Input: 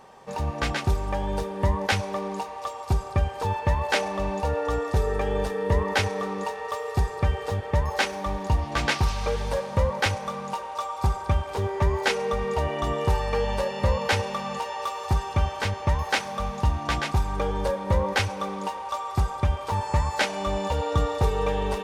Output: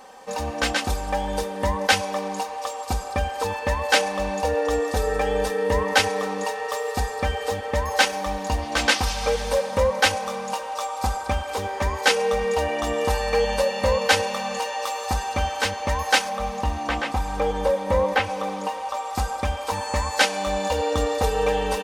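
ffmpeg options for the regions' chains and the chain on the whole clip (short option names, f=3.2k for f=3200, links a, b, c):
-filter_complex "[0:a]asettb=1/sr,asplit=3[a][b][c];[a]atrim=end=16.294[d];[b]atrim=start=16.29:end=19.13,asetpts=PTS-STARTPTS,afade=t=in:d=0.004:c=qsin,afade=t=out:st=2.836:d=0.004:c=qsin,acrossover=split=2800[e][f];[f]acompressor=threshold=-50dB:ratio=4:attack=1:release=60[g];[e][g]amix=inputs=2:normalize=0,equalizer=f=1.5k:w=7.7:g=-4[h];[c]atrim=start=19.126[i];[d][h]acrossfade=d=0.004:c1=hsin:c2=qsin[j];[j][i]acrossfade=d=0.004:c1=qsin:c2=hsin,bass=f=250:g=-8,treble=f=4k:g=5,aecho=1:1:3.9:0.73,volume=3dB"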